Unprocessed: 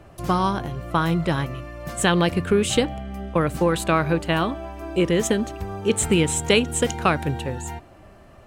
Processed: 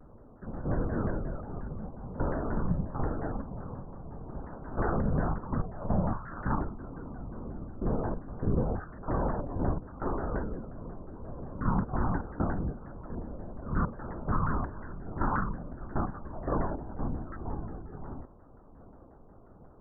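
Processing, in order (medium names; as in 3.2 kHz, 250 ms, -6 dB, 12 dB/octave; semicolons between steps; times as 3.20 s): spectral peaks clipped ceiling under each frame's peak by 17 dB; peaking EQ 350 Hz +8.5 dB 0.35 oct; in parallel at +1 dB: compression, threshold -33 dBFS, peak gain reduction 19.5 dB; on the sum: valve stage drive 11 dB, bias 0.8; distance through air 130 m; LPC vocoder at 8 kHz whisper; speed mistake 78 rpm record played at 33 rpm; vibrato with a chosen wave saw down 5.6 Hz, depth 250 cents; trim -7 dB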